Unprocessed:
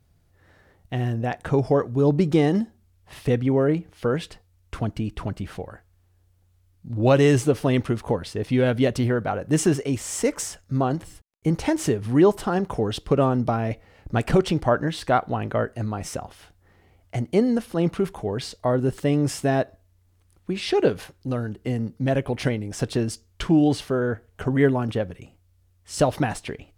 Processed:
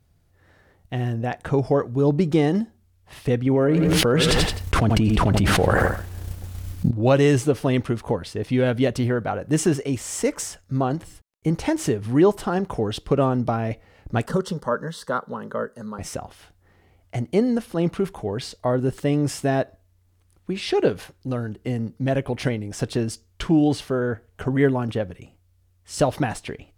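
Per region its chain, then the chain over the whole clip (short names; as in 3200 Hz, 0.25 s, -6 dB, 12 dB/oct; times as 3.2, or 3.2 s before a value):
3.46–6.91 expander -54 dBFS + feedback echo 85 ms, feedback 31%, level -14 dB + fast leveller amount 100%
14.26–15.99 HPF 160 Hz 6 dB/oct + fixed phaser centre 480 Hz, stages 8
whole clip: dry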